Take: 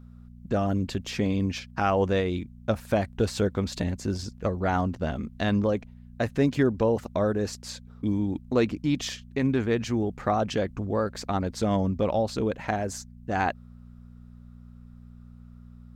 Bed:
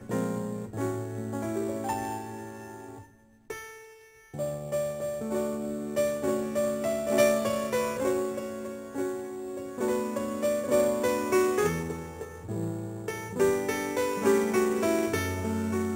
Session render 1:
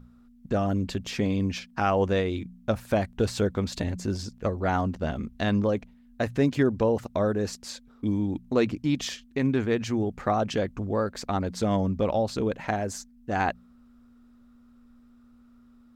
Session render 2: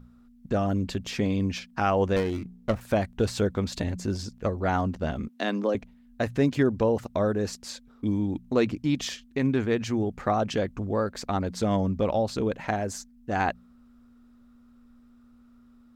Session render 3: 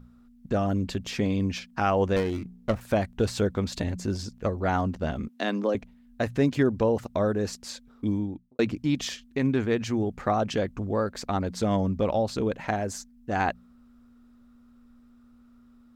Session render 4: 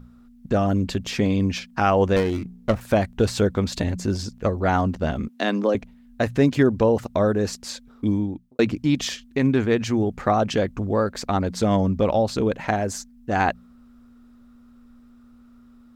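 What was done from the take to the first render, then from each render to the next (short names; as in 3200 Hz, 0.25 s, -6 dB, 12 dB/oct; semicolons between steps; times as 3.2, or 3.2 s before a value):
de-hum 60 Hz, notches 3
2.16–2.81 running maximum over 9 samples; 5.28–5.75 steep high-pass 220 Hz
8.05–8.59 studio fade out
gain +5 dB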